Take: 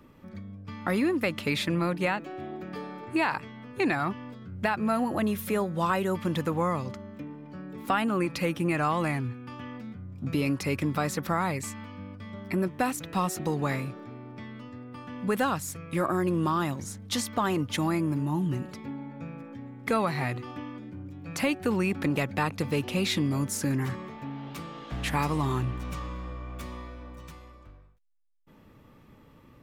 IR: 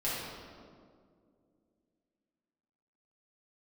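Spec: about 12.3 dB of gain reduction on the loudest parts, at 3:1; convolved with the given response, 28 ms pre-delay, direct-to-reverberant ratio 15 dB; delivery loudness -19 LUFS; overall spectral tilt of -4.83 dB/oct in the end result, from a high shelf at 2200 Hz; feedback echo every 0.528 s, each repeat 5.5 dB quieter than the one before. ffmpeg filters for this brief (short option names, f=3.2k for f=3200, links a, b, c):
-filter_complex "[0:a]highshelf=f=2.2k:g=4,acompressor=threshold=-39dB:ratio=3,aecho=1:1:528|1056|1584|2112|2640|3168|3696:0.531|0.281|0.149|0.079|0.0419|0.0222|0.0118,asplit=2[a][b];[1:a]atrim=start_sample=2205,adelay=28[c];[b][c]afir=irnorm=-1:irlink=0,volume=-22dB[d];[a][d]amix=inputs=2:normalize=0,volume=19.5dB"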